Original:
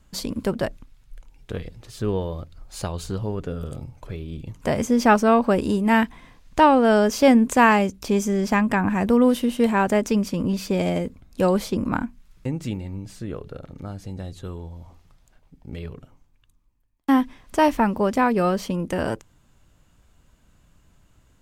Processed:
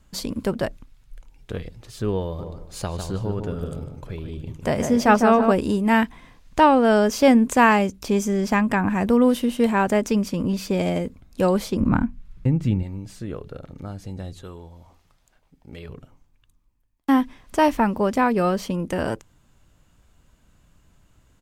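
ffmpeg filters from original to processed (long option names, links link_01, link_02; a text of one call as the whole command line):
ffmpeg -i in.wav -filter_complex "[0:a]asplit=3[link_01][link_02][link_03];[link_01]afade=type=out:start_time=2.38:duration=0.02[link_04];[link_02]asplit=2[link_05][link_06];[link_06]adelay=152,lowpass=frequency=1900:poles=1,volume=-5.5dB,asplit=2[link_07][link_08];[link_08]adelay=152,lowpass=frequency=1900:poles=1,volume=0.31,asplit=2[link_09][link_10];[link_10]adelay=152,lowpass=frequency=1900:poles=1,volume=0.31,asplit=2[link_11][link_12];[link_12]adelay=152,lowpass=frequency=1900:poles=1,volume=0.31[link_13];[link_05][link_07][link_09][link_11][link_13]amix=inputs=5:normalize=0,afade=type=in:start_time=2.38:duration=0.02,afade=type=out:start_time=5.51:duration=0.02[link_14];[link_03]afade=type=in:start_time=5.51:duration=0.02[link_15];[link_04][link_14][link_15]amix=inputs=3:normalize=0,asettb=1/sr,asplit=3[link_16][link_17][link_18];[link_16]atrim=end=11.804[link_19];[link_17]atrim=start=11.8:end=12.83,asetpts=PTS-STARTPTS,afade=type=in:duration=0.004:curve=qsin,afade=type=out:start_time=1.026:duration=0.004:curve=qsin,bass=frequency=250:gain=10,treble=frequency=4000:gain=-8[link_20];[link_18]atrim=start=12.826[link_21];[link_19][link_20]acrossfade=duration=0.004:curve1=hsin:curve2=qsin[link_22];[link_22][link_21]acrossfade=duration=0.004:curve1=qsin:curve2=hsin,asettb=1/sr,asplit=3[link_23][link_24][link_25];[link_23]atrim=end=14.424[link_26];[link_24]atrim=start=14.42:end=15.89,asetpts=PTS-STARTPTS,afade=type=in:duration=0.004:curve=qsin,afade=type=out:start_time=1.466:duration=0.004:curve=qsin,lowshelf=frequency=290:gain=-8[link_27];[link_25]atrim=start=15.886[link_28];[link_26][link_27]acrossfade=duration=0.004:curve1=hsin:curve2=qsin[link_29];[link_29][link_28]acrossfade=duration=0.004:curve1=qsin:curve2=hsin" out.wav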